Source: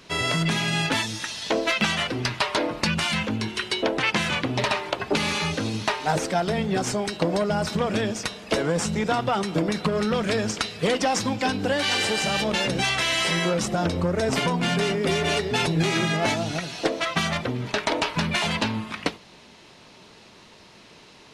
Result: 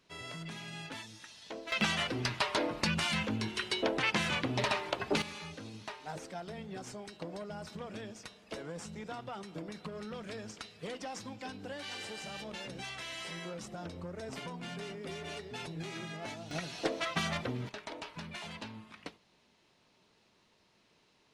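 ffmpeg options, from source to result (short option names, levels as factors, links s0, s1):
-af "asetnsamples=n=441:p=0,asendcmd='1.72 volume volume -7.5dB;5.22 volume volume -19dB;16.51 volume volume -9dB;17.69 volume volume -19.5dB',volume=0.1"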